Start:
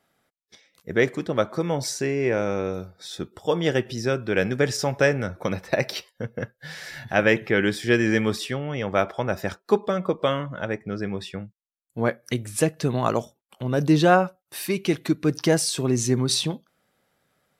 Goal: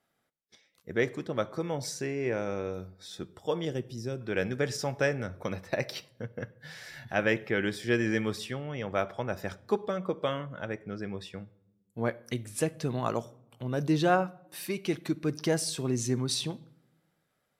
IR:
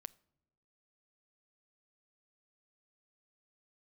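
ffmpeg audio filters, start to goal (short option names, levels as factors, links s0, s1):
-filter_complex "[0:a]asettb=1/sr,asplit=3[s0][s1][s2];[s0]atrim=end=3.654[s3];[s1]atrim=start=3.65:end=4.21,asetpts=PTS-STARTPTS,afade=t=in:d=0.004:c=qsin,afade=t=out:st=0.556:d=0.004:c=qsin,equalizer=f=1600:t=o:w=2.8:g=-12[s4];[s2]atrim=start=4.206[s5];[s3][s4]acrossfade=d=0.004:c1=hsin:c2=qsin[s6];[s6][s5]acrossfade=d=0.004:c1=qsin:c2=hsin[s7];[1:a]atrim=start_sample=2205,asetrate=36162,aresample=44100[s8];[s7][s8]afir=irnorm=-1:irlink=0,volume=0.708"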